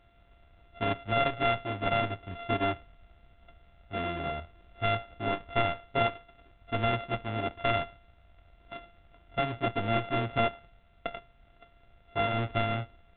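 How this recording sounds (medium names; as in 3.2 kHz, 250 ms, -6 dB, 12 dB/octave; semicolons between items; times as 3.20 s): a buzz of ramps at a fixed pitch in blocks of 64 samples; A-law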